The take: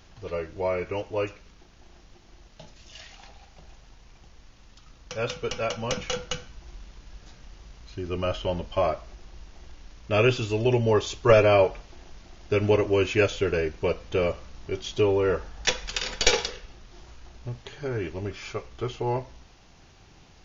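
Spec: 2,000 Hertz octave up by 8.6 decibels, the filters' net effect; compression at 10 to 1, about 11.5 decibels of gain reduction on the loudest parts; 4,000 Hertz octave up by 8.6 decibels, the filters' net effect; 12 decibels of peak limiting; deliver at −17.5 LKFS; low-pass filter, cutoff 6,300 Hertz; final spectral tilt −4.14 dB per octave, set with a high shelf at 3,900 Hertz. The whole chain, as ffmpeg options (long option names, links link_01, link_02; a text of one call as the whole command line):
ffmpeg -i in.wav -af "lowpass=6300,equalizer=frequency=2000:width_type=o:gain=7.5,highshelf=frequency=3900:gain=6,equalizer=frequency=4000:width_type=o:gain=5.5,acompressor=threshold=-22dB:ratio=10,volume=13.5dB,alimiter=limit=-6dB:level=0:latency=1" out.wav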